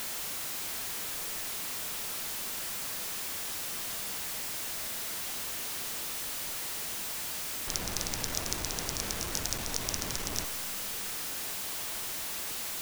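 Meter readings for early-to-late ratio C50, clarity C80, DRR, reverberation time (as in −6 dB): 13.0 dB, 14.0 dB, 11.5 dB, 2.2 s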